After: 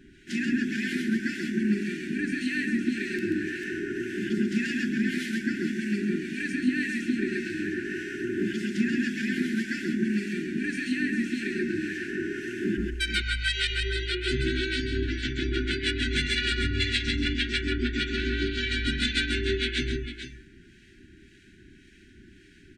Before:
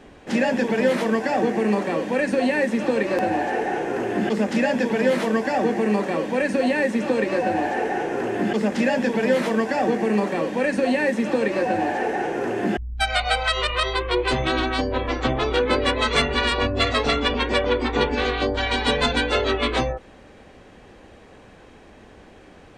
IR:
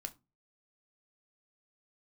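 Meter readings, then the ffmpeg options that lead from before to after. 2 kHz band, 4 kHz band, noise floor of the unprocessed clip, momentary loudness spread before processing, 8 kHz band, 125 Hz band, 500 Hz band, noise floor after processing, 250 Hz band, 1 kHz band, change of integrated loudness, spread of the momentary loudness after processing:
−4.0 dB, −3.5 dB, −47 dBFS, 4 LU, −3.5 dB, −2.5 dB, −13.5 dB, −54 dBFS, −3.5 dB, −23.0 dB, −6.0 dB, 6 LU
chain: -filter_complex "[0:a]aecho=1:1:134|446:0.668|0.398,acrossover=split=1500[link_01][link_02];[link_01]aeval=exprs='val(0)*(1-0.5/2+0.5/2*cos(2*PI*1.8*n/s))':channel_layout=same[link_03];[link_02]aeval=exprs='val(0)*(1-0.5/2-0.5/2*cos(2*PI*1.8*n/s))':channel_layout=same[link_04];[link_03][link_04]amix=inputs=2:normalize=0,afftfilt=real='re*(1-between(b*sr/4096,400,1400))':imag='im*(1-between(b*sr/4096,400,1400))':win_size=4096:overlap=0.75,volume=-3.5dB"

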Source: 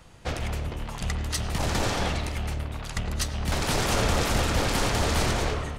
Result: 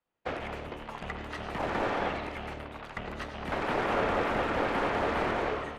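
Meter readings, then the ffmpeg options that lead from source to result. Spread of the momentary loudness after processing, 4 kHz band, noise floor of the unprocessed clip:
12 LU, −12.0 dB, −37 dBFS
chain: -filter_complex "[0:a]acrossover=split=2600[link_01][link_02];[link_02]acompressor=threshold=-44dB:ratio=4:attack=1:release=60[link_03];[link_01][link_03]amix=inputs=2:normalize=0,acrossover=split=230 3400:gain=0.158 1 0.2[link_04][link_05][link_06];[link_04][link_05][link_06]amix=inputs=3:normalize=0,agate=range=-33dB:threshold=-39dB:ratio=3:detection=peak"

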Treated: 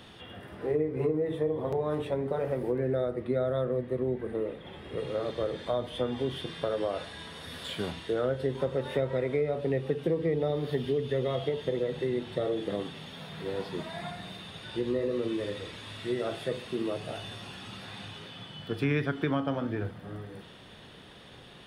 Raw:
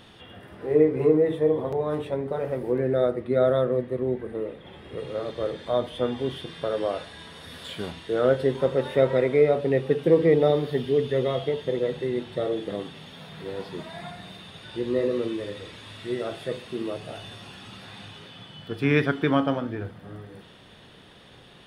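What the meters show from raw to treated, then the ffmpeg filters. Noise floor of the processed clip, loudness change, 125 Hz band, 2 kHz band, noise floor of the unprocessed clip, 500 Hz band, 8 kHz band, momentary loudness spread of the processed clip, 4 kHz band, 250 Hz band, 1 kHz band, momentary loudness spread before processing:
−50 dBFS, −7.0 dB, −3.0 dB, −5.5 dB, −50 dBFS, −6.5 dB, can't be measured, 13 LU, −2.0 dB, −5.5 dB, −5.0 dB, 21 LU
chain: -filter_complex "[0:a]acrossover=split=120[link_01][link_02];[link_02]acompressor=threshold=-26dB:ratio=6[link_03];[link_01][link_03]amix=inputs=2:normalize=0"

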